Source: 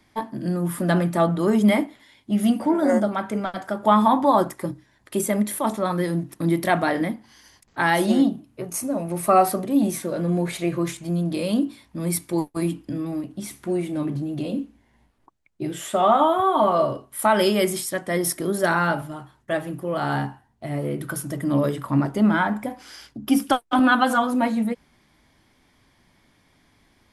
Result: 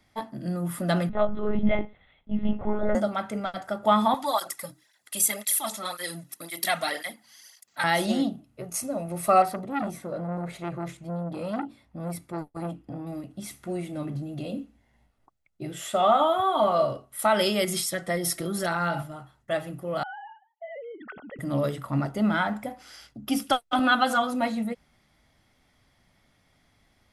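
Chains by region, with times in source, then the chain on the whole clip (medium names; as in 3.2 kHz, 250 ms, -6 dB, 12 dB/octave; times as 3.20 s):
1.09–2.95 s: treble shelf 2.9 kHz -9.5 dB + monotone LPC vocoder at 8 kHz 210 Hz
4.14–7.84 s: tilt EQ +4 dB/octave + cancelling through-zero flanger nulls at 1.9 Hz, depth 3 ms
9.42–13.07 s: treble shelf 2.2 kHz -11 dB + transformer saturation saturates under 900 Hz
17.64–19.03 s: comb 5.9 ms, depth 90% + compression 4:1, threshold -19 dBFS
20.03–21.39 s: formants replaced by sine waves + compression 4:1, threshold -34 dBFS
whole clip: dynamic bell 4.2 kHz, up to +6 dB, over -40 dBFS, Q 0.74; comb 1.5 ms, depth 36%; trim -5 dB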